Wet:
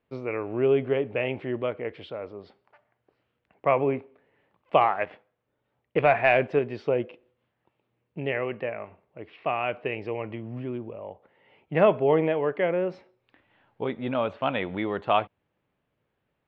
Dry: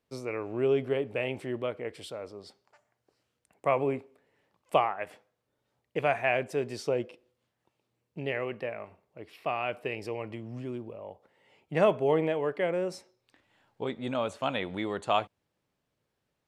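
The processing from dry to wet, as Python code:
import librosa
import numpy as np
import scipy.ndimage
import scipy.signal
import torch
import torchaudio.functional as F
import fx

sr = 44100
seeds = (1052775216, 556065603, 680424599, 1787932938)

y = fx.leveller(x, sr, passes=1, at=(4.81, 6.59))
y = scipy.signal.sosfilt(scipy.signal.butter(4, 3100.0, 'lowpass', fs=sr, output='sos'), y)
y = y * librosa.db_to_amplitude(4.0)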